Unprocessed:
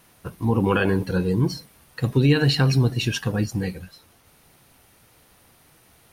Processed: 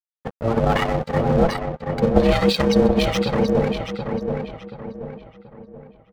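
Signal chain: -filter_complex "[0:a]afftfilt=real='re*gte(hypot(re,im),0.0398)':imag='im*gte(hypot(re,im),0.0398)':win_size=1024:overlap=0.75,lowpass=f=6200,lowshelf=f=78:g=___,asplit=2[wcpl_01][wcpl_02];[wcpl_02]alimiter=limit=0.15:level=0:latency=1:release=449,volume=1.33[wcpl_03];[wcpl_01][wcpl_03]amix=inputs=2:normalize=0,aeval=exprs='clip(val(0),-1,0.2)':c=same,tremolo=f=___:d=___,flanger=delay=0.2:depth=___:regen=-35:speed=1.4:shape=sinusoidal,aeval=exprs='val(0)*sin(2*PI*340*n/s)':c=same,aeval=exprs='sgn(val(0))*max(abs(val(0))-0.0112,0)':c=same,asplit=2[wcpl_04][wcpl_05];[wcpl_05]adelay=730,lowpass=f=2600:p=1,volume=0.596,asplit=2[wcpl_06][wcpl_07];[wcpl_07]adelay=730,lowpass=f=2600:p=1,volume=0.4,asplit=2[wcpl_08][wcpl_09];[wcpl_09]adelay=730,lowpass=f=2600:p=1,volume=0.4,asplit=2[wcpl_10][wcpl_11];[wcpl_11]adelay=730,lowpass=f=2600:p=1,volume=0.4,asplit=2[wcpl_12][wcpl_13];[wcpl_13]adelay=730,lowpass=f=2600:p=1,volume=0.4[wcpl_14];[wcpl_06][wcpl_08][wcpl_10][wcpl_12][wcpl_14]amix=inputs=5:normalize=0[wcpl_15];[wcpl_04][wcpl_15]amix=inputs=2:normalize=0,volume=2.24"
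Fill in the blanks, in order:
4.5, 32, 0.333, 5.2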